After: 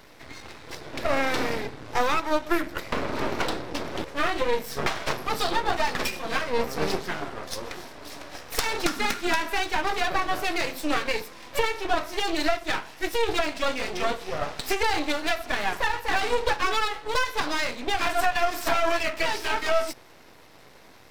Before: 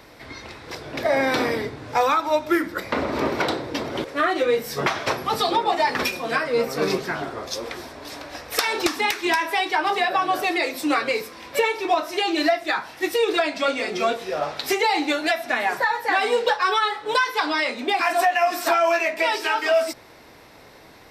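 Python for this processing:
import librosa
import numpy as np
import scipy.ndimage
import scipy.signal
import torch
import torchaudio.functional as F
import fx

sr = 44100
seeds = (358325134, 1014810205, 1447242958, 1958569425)

y = np.maximum(x, 0.0)
y = fx.small_body(y, sr, hz=(200.0, 1400.0), ring_ms=45, db=fx.line((8.85, 13.0), (9.49, 10.0)), at=(8.85, 9.49), fade=0.02)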